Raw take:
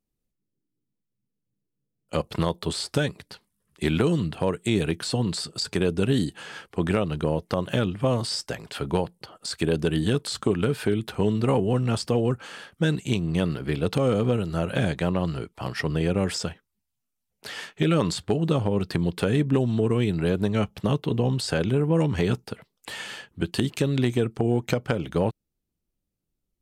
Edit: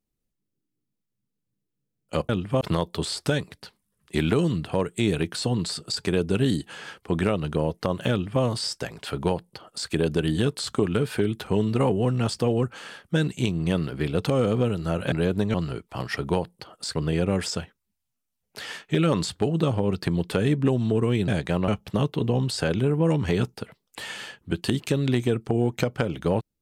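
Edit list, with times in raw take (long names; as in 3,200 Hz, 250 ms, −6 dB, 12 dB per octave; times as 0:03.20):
0:07.79–0:08.11: duplicate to 0:02.29
0:08.79–0:09.57: duplicate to 0:15.83
0:14.80–0:15.20: swap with 0:20.16–0:20.58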